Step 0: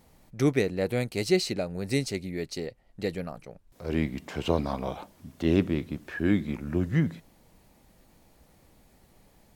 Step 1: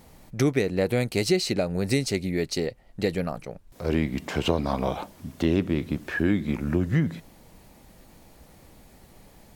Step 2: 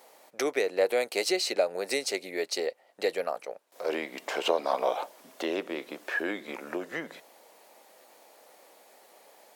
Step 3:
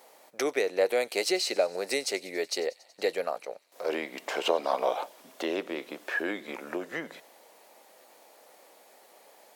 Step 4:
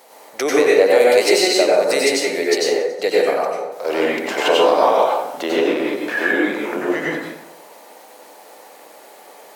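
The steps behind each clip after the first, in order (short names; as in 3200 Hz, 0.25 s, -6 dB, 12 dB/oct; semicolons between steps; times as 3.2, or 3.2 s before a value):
compressor 3:1, threshold -28 dBFS, peak gain reduction 9 dB; gain +7.5 dB
ladder high-pass 420 Hz, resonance 30%; gain +6 dB
thin delay 93 ms, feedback 74%, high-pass 3600 Hz, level -19 dB
plate-style reverb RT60 0.91 s, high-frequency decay 0.45×, pre-delay 80 ms, DRR -5 dB; gain +7.5 dB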